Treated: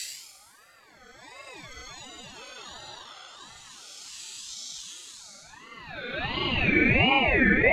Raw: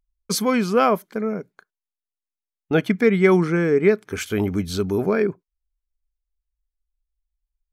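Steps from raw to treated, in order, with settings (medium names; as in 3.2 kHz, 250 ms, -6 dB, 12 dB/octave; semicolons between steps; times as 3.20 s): Paulstretch 16×, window 0.05 s, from 0.39 s; band-pass sweep 5.9 kHz -> 850 Hz, 5.39–7.13 s; ring modulator with a swept carrier 1.3 kHz, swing 25%, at 1.4 Hz; trim +2 dB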